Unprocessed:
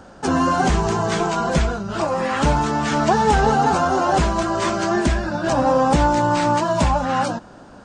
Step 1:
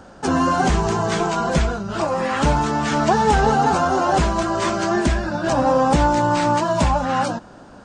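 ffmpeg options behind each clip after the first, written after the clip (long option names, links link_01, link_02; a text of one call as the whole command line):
ffmpeg -i in.wav -af anull out.wav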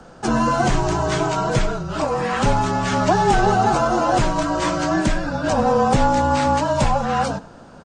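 ffmpeg -i in.wav -filter_complex "[0:a]afreqshift=-35,asplit=2[link_01][link_02];[link_02]adelay=99.13,volume=-19dB,highshelf=frequency=4000:gain=-2.23[link_03];[link_01][link_03]amix=inputs=2:normalize=0" out.wav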